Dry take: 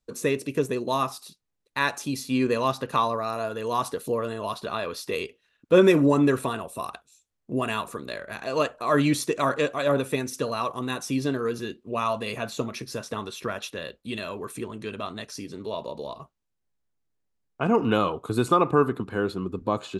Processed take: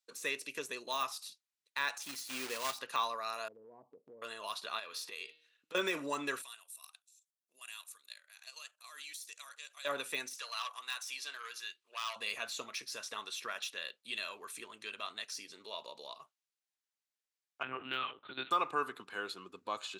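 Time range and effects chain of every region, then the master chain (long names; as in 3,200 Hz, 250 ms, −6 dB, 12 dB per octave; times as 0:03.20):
0:02.02–0:02.79: one scale factor per block 3 bits + high-shelf EQ 4,700 Hz +10 dB
0:03.48–0:04.22: Gaussian smoothing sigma 17 samples + downward compressor 3 to 1, threshold −33 dBFS
0:04.79–0:05.75: hum removal 157 Hz, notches 31 + downward compressor 10 to 1, threshold −32 dBFS
0:06.42–0:09.85: first difference + output level in coarse steps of 9 dB
0:10.36–0:12.16: high-pass filter 1,000 Hz + saturating transformer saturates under 2,400 Hz
0:17.63–0:18.51: flat-topped bell 690 Hz −10 dB 1.3 octaves + one-pitch LPC vocoder at 8 kHz 130 Hz
whole clip: meter weighting curve A; de-essing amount 85%; tilt shelving filter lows −8 dB, about 1,200 Hz; level −8.5 dB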